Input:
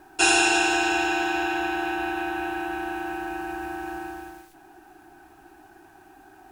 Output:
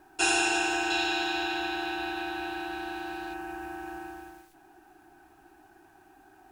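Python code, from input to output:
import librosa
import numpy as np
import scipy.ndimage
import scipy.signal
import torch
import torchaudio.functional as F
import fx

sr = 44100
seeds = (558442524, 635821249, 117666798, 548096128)

y = fx.peak_eq(x, sr, hz=4000.0, db=13.5, octaves=0.61, at=(0.9, 3.34))
y = y * librosa.db_to_amplitude(-6.0)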